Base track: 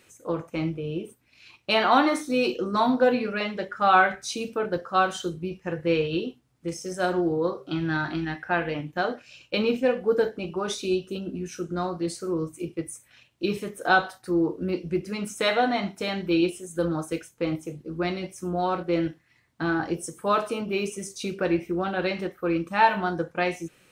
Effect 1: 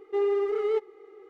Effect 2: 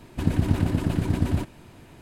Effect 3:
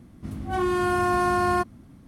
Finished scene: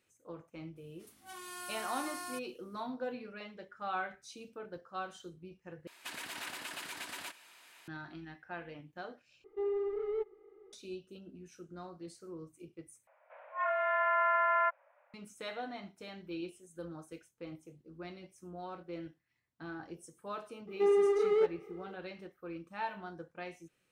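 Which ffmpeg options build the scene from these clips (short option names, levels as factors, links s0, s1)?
-filter_complex "[3:a]asplit=2[s0][s1];[1:a]asplit=2[s2][s3];[0:a]volume=0.119[s4];[s0]aderivative[s5];[2:a]highpass=1500[s6];[s2]aemphasis=mode=reproduction:type=riaa[s7];[s1]highpass=f=390:t=q:w=0.5412,highpass=f=390:t=q:w=1.307,lowpass=f=2200:t=q:w=0.5176,lowpass=f=2200:t=q:w=0.7071,lowpass=f=2200:t=q:w=1.932,afreqshift=310[s8];[s4]asplit=4[s9][s10][s11][s12];[s9]atrim=end=5.874[s13];[s6]atrim=end=2.01[s14];[s10]atrim=start=7.876:end=9.444[s15];[s7]atrim=end=1.29,asetpts=PTS-STARTPTS,volume=0.237[s16];[s11]atrim=start=10.726:end=13.074[s17];[s8]atrim=end=2.07,asetpts=PTS-STARTPTS,volume=0.562[s18];[s12]atrim=start=15.136[s19];[s5]atrim=end=2.07,asetpts=PTS-STARTPTS,volume=0.631,afade=t=in:d=0.004:c=hsin,afade=t=out:st=2.066:d=0.004:c=hsin,adelay=760[s20];[s3]atrim=end=1.29,asetpts=PTS-STARTPTS,volume=0.841,afade=t=in:d=0.004:c=hsin,afade=t=out:st=1.286:d=0.004:c=hsin,adelay=20670[s21];[s13][s14]acrossfade=d=0.004:c1=hsin:c2=hsin[s22];[s22][s15]acrossfade=d=0.004:c1=hsin:c2=hsin[s23];[s23][s16]acrossfade=d=0.004:c1=hsin:c2=hsin[s24];[s24][s17]acrossfade=d=0.004:c1=hsin:c2=hsin[s25];[s25][s18]acrossfade=d=0.004:c1=hsin:c2=hsin[s26];[s26][s19]acrossfade=d=0.004:c1=hsin:c2=hsin[s27];[s27][s20][s21]amix=inputs=3:normalize=0"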